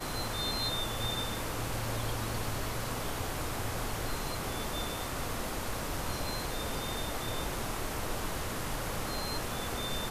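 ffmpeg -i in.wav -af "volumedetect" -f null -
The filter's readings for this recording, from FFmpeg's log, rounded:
mean_volume: -34.4 dB
max_volume: -21.5 dB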